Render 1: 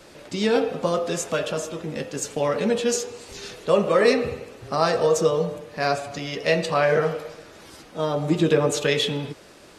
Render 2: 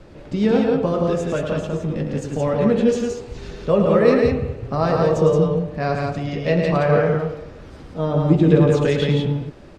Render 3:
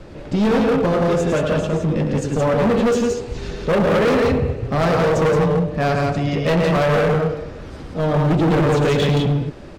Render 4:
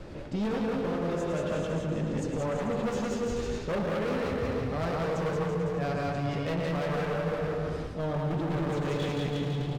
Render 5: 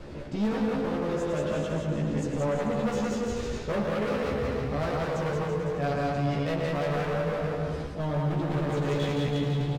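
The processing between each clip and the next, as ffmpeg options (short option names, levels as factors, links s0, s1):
-filter_complex "[0:a]aemphasis=mode=reproduction:type=riaa,asplit=2[s0][s1];[s1]aecho=0:1:107.9|172:0.447|0.708[s2];[s0][s2]amix=inputs=2:normalize=0,volume=0.841"
-af "volume=9.44,asoftclip=hard,volume=0.106,volume=1.88"
-af "aecho=1:1:190|332.5|439.4|519.5|579.6:0.631|0.398|0.251|0.158|0.1,areverse,acompressor=threshold=0.0631:ratio=5,areverse,volume=0.596"
-filter_complex "[0:a]asplit=2[s0][s1];[s1]adelay=14,volume=0.631[s2];[s0][s2]amix=inputs=2:normalize=0"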